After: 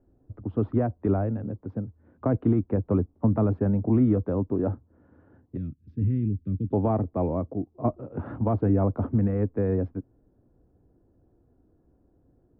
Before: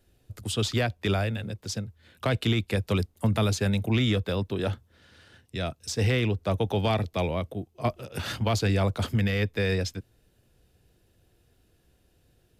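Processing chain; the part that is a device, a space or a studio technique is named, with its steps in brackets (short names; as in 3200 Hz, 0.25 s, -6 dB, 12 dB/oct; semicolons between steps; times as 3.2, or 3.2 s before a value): 5.57–6.73 Chebyshev band-stop 200–3200 Hz, order 2; under water (LPF 1100 Hz 24 dB/oct; bell 280 Hz +10 dB 0.57 oct)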